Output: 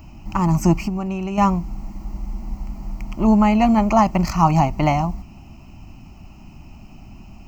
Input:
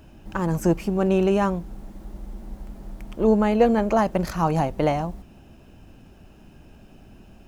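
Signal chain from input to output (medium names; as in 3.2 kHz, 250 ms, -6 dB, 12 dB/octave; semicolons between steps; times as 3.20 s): 0.83–1.38 s: compression 6:1, threshold -26 dBFS, peak gain reduction 10 dB; static phaser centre 2.4 kHz, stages 8; trim +8.5 dB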